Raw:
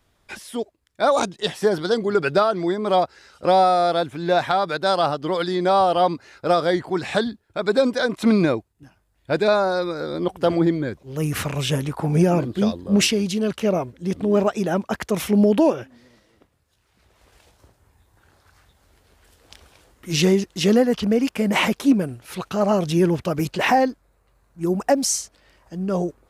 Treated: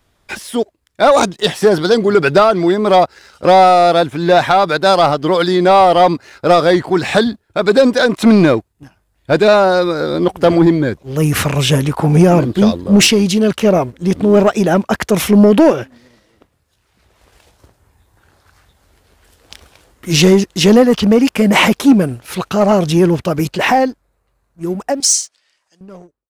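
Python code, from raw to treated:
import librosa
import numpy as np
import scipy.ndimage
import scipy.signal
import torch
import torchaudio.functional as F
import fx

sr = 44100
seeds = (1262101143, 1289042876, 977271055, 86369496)

y = fx.fade_out_tail(x, sr, length_s=4.28)
y = fx.weighting(y, sr, curve='ITU-R 468', at=(25.0, 25.81))
y = fx.leveller(y, sr, passes=1)
y = y * librosa.db_to_amplitude(6.5)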